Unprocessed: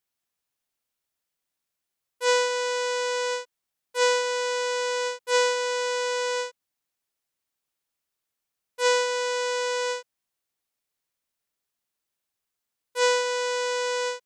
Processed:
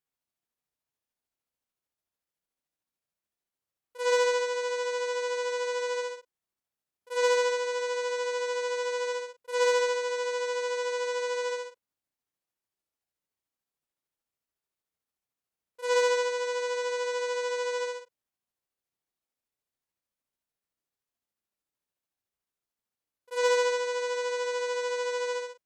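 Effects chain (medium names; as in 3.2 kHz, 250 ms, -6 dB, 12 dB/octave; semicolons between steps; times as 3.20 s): granular stretch 1.8×, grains 148 ms; tilt shelf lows +3.5 dB, about 1.3 kHz; Chebyshev shaper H 5 -44 dB, 6 -34 dB, 7 -36 dB, 8 -37 dB, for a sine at -12 dBFS; trim -3.5 dB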